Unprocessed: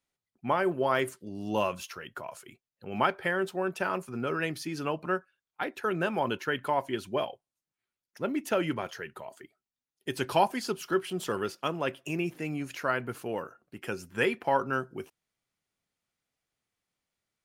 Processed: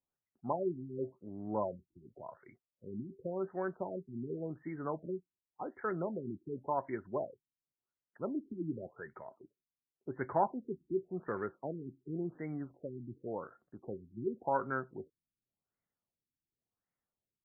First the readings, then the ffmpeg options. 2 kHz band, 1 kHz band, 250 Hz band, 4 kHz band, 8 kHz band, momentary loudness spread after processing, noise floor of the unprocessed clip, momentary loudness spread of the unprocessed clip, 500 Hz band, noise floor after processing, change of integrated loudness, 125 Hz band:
-15.5 dB, -8.5 dB, -6.0 dB, under -40 dB, under -35 dB, 15 LU, under -85 dBFS, 14 LU, -7.5 dB, under -85 dBFS, -8.0 dB, -6.0 dB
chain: -af "lowpass=f=3.1k:w=0.5412,lowpass=f=3.1k:w=1.3066,afftfilt=real='re*lt(b*sr/1024,360*pow(2300/360,0.5+0.5*sin(2*PI*0.9*pts/sr)))':imag='im*lt(b*sr/1024,360*pow(2300/360,0.5+0.5*sin(2*PI*0.9*pts/sr)))':win_size=1024:overlap=0.75,volume=-6dB"

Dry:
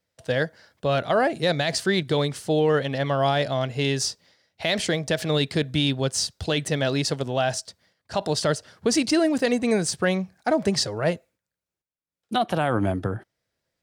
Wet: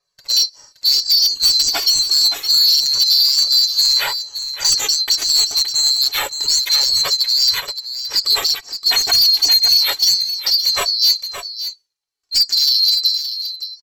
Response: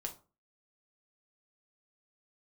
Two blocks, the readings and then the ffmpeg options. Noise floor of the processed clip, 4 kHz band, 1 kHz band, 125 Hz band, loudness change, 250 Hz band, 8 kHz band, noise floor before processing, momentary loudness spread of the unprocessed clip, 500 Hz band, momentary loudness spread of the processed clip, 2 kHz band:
-65 dBFS, +19.0 dB, -3.5 dB, under -20 dB, +11.0 dB, under -20 dB, +12.5 dB, under -85 dBFS, 7 LU, -15.0 dB, 10 LU, +0.5 dB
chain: -filter_complex "[0:a]afftfilt=real='real(if(lt(b,736),b+184*(1-2*mod(floor(b/184),2)),b),0)':imag='imag(if(lt(b,736),b+184*(1-2*mod(floor(b/184),2)),b),0)':win_size=2048:overlap=0.75,lowpass=11k,lowshelf=f=240:g=-3,aecho=1:1:7.1:0.44,alimiter=limit=-12.5dB:level=0:latency=1:release=398,acontrast=48,aphaser=in_gain=1:out_gain=1:delay=3.3:decay=0.29:speed=0.68:type=sinusoidal,asoftclip=type=tanh:threshold=-11dB,flanger=delay=1.7:depth=1.1:regen=-16:speed=0.28:shape=triangular,aeval=exprs='0.15*(abs(mod(val(0)/0.15+3,4)-2)-1)':c=same,asplit=2[a][b];[b]aecho=0:1:570:0.335[c];[a][c]amix=inputs=2:normalize=0,adynamicequalizer=threshold=0.0112:dfrequency=2000:dqfactor=0.7:tfrequency=2000:tqfactor=0.7:attack=5:release=100:ratio=0.375:range=3.5:mode=boostabove:tftype=highshelf,volume=2dB"

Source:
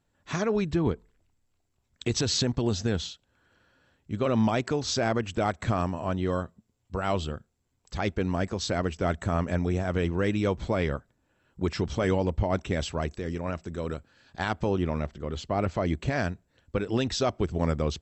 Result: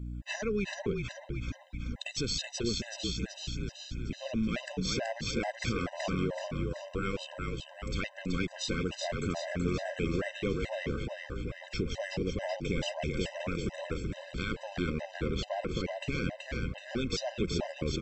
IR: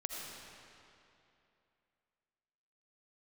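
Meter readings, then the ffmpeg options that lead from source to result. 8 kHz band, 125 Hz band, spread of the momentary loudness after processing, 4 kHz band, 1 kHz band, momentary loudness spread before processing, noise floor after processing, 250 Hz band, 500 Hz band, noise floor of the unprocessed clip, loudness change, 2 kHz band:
-4.0 dB, -6.5 dB, 6 LU, -2.0 dB, -9.0 dB, 9 LU, -51 dBFS, -5.5 dB, -6.5 dB, -74 dBFS, -6.0 dB, -2.0 dB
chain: -filter_complex "[0:a]equalizer=f=100:t=o:w=0.67:g=-9,equalizer=f=1k:t=o:w=0.67:g=-10,equalizer=f=2.5k:t=o:w=0.67:g=7,aeval=exprs='val(0)+0.00708*(sin(2*PI*60*n/s)+sin(2*PI*2*60*n/s)/2+sin(2*PI*3*60*n/s)/3+sin(2*PI*4*60*n/s)/4+sin(2*PI*5*60*n/s)/5)':c=same,acompressor=threshold=-36dB:ratio=4,asplit=9[a][b][c][d][e][f][g][h][i];[b]adelay=378,afreqshift=-34,volume=-3.5dB[j];[c]adelay=756,afreqshift=-68,volume=-8.2dB[k];[d]adelay=1134,afreqshift=-102,volume=-13dB[l];[e]adelay=1512,afreqshift=-136,volume=-17.7dB[m];[f]adelay=1890,afreqshift=-170,volume=-22.4dB[n];[g]adelay=2268,afreqshift=-204,volume=-27.2dB[o];[h]adelay=2646,afreqshift=-238,volume=-31.9dB[p];[i]adelay=3024,afreqshift=-272,volume=-36.6dB[q];[a][j][k][l][m][n][o][p][q]amix=inputs=9:normalize=0,afftfilt=real='re*gt(sin(2*PI*2.3*pts/sr)*(1-2*mod(floor(b*sr/1024/520),2)),0)':imag='im*gt(sin(2*PI*2.3*pts/sr)*(1-2*mod(floor(b*sr/1024/520),2)),0)':win_size=1024:overlap=0.75,volume=6dB"

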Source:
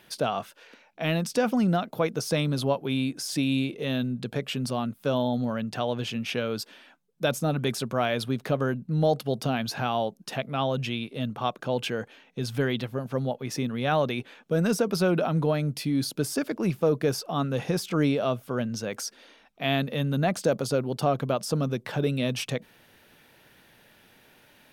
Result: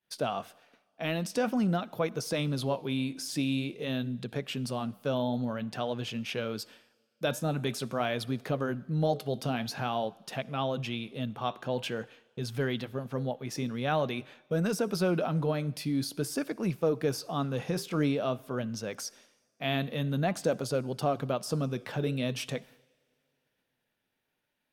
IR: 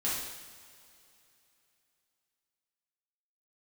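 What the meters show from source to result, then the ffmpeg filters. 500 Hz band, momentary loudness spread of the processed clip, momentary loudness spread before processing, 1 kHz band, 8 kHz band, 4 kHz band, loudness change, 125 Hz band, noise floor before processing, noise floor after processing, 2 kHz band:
-4.5 dB, 7 LU, 7 LU, -4.5 dB, -4.5 dB, -4.5 dB, -4.5 dB, -4.5 dB, -59 dBFS, -80 dBFS, -4.5 dB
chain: -filter_complex "[0:a]agate=range=-33dB:threshold=-44dB:ratio=3:detection=peak,flanger=delay=1:depth=8.8:regen=-80:speed=0.48:shape=triangular,asplit=2[a][b];[1:a]atrim=start_sample=2205,lowshelf=f=190:g=-10,adelay=58[c];[b][c]afir=irnorm=-1:irlink=0,volume=-28dB[d];[a][d]amix=inputs=2:normalize=0"

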